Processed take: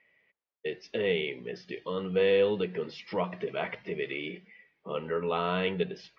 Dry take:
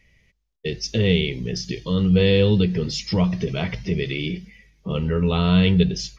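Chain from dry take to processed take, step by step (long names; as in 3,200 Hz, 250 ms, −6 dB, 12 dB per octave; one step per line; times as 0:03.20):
band-pass filter 510–2,100 Hz
high-frequency loss of the air 130 metres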